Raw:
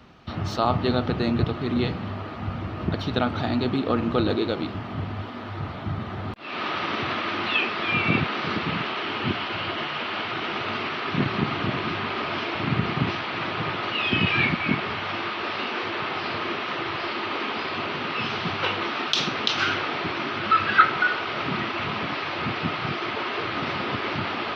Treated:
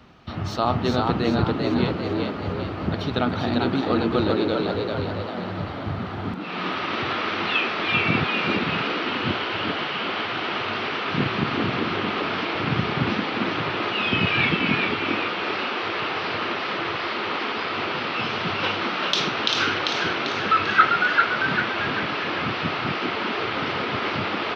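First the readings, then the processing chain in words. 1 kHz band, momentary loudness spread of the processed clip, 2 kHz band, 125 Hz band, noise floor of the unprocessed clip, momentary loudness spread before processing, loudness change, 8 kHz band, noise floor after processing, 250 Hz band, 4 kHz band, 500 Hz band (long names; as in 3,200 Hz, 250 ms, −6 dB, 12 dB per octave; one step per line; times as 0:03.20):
+2.0 dB, 7 LU, +2.5 dB, +0.5 dB, −34 dBFS, 9 LU, +2.0 dB, can't be measured, −30 dBFS, +2.0 dB, +2.5 dB, +3.0 dB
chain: echo with shifted repeats 394 ms, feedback 48%, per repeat +84 Hz, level −3.5 dB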